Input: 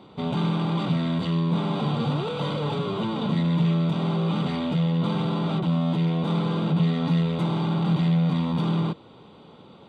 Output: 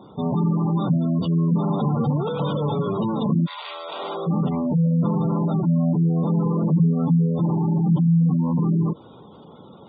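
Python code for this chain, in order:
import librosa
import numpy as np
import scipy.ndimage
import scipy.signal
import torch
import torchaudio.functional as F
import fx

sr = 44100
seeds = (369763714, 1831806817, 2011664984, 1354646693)

y = fx.highpass(x, sr, hz=fx.line((3.45, 1000.0), (4.26, 310.0)), slope=24, at=(3.45, 4.26), fade=0.02)
y = fx.spec_gate(y, sr, threshold_db=-20, keep='strong')
y = y * librosa.db_to_amplitude(4.0)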